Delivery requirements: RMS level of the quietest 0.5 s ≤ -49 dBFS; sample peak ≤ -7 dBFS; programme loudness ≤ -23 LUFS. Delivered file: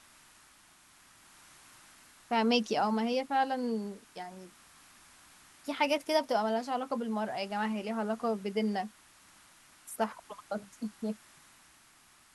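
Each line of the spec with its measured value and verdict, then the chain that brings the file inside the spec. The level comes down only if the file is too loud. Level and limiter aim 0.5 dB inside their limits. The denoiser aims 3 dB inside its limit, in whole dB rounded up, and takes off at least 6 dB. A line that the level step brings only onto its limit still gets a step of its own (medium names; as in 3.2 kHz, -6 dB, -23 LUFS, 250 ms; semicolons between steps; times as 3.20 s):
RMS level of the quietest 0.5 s -61 dBFS: pass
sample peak -13.5 dBFS: pass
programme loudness -32.5 LUFS: pass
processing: none needed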